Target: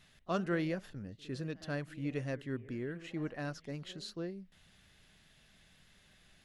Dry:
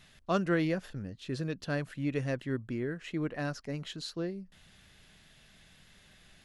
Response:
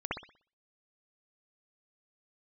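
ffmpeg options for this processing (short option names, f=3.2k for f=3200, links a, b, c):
-filter_complex "[0:a]asplit=2[a][b];[b]asetrate=48000,aresample=44100[c];[1:a]atrim=start_sample=2205[d];[c][d]afir=irnorm=-1:irlink=0,volume=-22dB[e];[a][e]amix=inputs=2:normalize=0,volume=-5dB"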